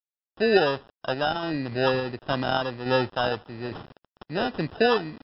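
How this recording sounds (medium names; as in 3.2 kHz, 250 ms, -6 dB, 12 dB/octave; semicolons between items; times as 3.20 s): a quantiser's noise floor 8-bit, dither none; random-step tremolo; aliases and images of a low sample rate 2.2 kHz, jitter 0%; MP3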